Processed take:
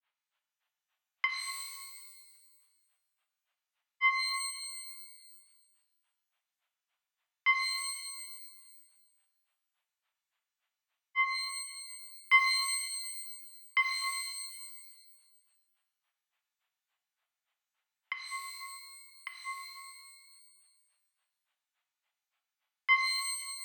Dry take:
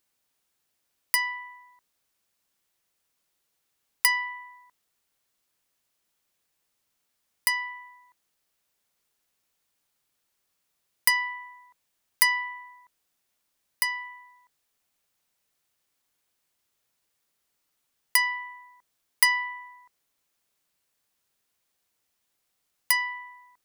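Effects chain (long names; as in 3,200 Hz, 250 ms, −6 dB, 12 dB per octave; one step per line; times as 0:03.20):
granular cloud 147 ms, grains 3.5 per second, pitch spread up and down by 0 semitones
single-sideband voice off tune +99 Hz 600–3,400 Hz
reverb with rising layers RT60 1.4 s, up +12 semitones, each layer −2 dB, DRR 4 dB
level +2 dB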